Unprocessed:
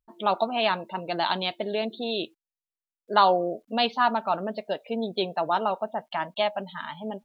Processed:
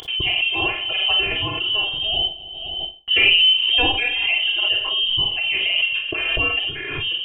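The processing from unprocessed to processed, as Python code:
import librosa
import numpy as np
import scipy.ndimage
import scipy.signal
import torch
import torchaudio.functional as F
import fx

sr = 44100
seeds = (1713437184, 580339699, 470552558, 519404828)

p1 = fx.law_mismatch(x, sr, coded='mu')
p2 = scipy.signal.sosfilt(scipy.signal.butter(2, 130.0, 'highpass', fs=sr, output='sos'), p1)
p3 = fx.band_shelf(p2, sr, hz=1200.0, db=-8.5, octaves=1.7)
p4 = p3 + 0.91 * np.pad(p3, (int(3.0 * sr / 1000.0), 0))[:len(p3)]
p5 = fx.dynamic_eq(p4, sr, hz=260.0, q=1.2, threshold_db=-41.0, ratio=4.0, max_db=4)
p6 = fx.freq_invert(p5, sr, carrier_hz=3400)
p7 = fx.rider(p6, sr, range_db=4, speed_s=0.5)
p8 = p6 + F.gain(torch.from_numpy(p7), -2.5).numpy()
p9 = fx.tremolo_random(p8, sr, seeds[0], hz=3.5, depth_pct=55)
p10 = p9 + fx.echo_feedback(p9, sr, ms=261, feedback_pct=29, wet_db=-24.0, dry=0)
p11 = fx.rev_schroeder(p10, sr, rt60_s=0.34, comb_ms=29, drr_db=1.5)
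y = fx.pre_swell(p11, sr, db_per_s=28.0)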